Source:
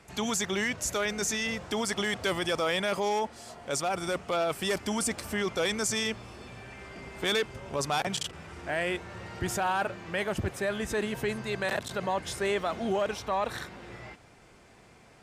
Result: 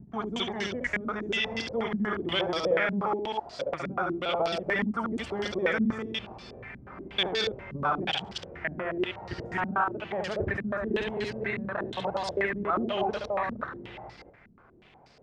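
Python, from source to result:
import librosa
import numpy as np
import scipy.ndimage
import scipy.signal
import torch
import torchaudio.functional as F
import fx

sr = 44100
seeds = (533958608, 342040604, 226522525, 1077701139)

p1 = fx.local_reverse(x, sr, ms=133.0)
p2 = fx.quant_dither(p1, sr, seeds[0], bits=8, dither='none')
p3 = p1 + (p2 * 10.0 ** (-10.5 / 20.0))
p4 = p3 + 10.0 ** (-3.0 / 20.0) * np.pad(p3, (int(71 * sr / 1000.0), 0))[:len(p3)]
p5 = fx.filter_held_lowpass(p4, sr, hz=8.3, low_hz=220.0, high_hz=4800.0)
y = p5 * 10.0 ** (-6.0 / 20.0)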